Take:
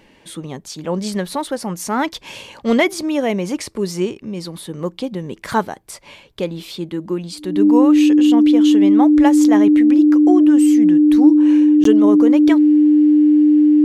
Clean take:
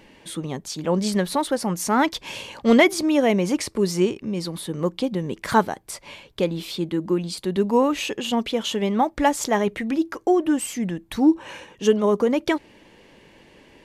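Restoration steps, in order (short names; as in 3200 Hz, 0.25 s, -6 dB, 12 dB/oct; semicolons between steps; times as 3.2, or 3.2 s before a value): notch 300 Hz, Q 30; interpolate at 11.84, 13 ms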